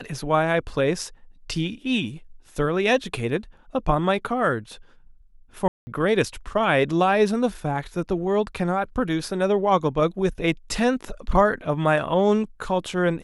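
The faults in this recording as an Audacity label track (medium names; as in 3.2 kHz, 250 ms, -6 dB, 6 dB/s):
5.680000	5.870000	dropout 190 ms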